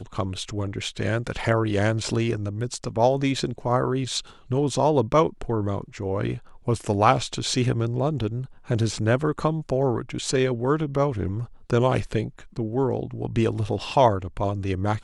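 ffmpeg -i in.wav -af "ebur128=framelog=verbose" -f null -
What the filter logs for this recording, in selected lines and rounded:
Integrated loudness:
  I:         -24.8 LUFS
  Threshold: -34.8 LUFS
Loudness range:
  LRA:         1.5 LU
  Threshold: -44.7 LUFS
  LRA low:   -25.3 LUFS
  LRA high:  -23.8 LUFS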